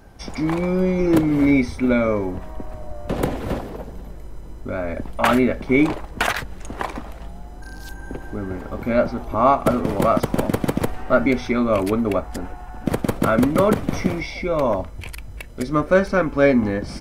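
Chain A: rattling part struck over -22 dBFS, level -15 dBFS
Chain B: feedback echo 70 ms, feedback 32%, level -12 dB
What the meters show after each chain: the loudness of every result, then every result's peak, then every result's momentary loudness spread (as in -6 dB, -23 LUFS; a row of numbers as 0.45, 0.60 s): -20.5, -20.5 LUFS; -2.5, -2.5 dBFS; 19, 19 LU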